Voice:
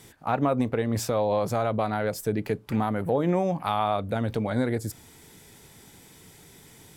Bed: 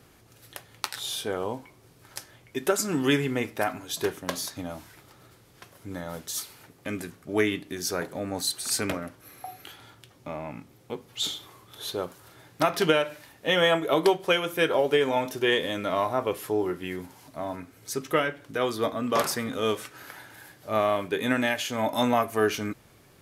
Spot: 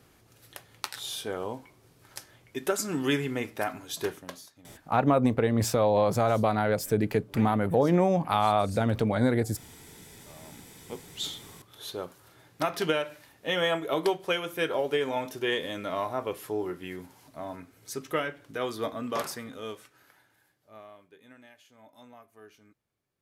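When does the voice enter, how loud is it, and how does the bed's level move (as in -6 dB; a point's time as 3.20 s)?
4.65 s, +1.5 dB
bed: 4.13 s -3.5 dB
4.53 s -20.5 dB
10.15 s -20.5 dB
10.91 s -5 dB
19.01 s -5 dB
21.20 s -28.5 dB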